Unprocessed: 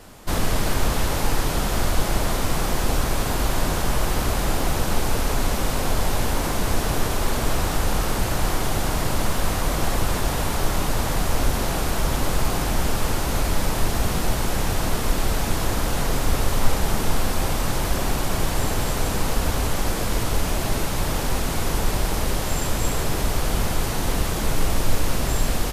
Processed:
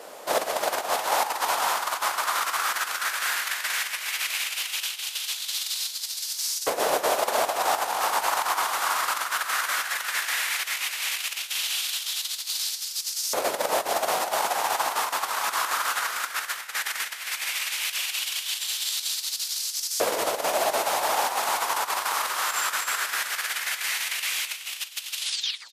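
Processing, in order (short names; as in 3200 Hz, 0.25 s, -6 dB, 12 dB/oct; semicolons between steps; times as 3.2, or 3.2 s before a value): tape stop at the end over 0.58 s; negative-ratio compressor -22 dBFS, ratio -1; on a send: feedback echo 0.278 s, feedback 36%, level -17.5 dB; on the sum: LFO high-pass saw up 0.15 Hz 510–5400 Hz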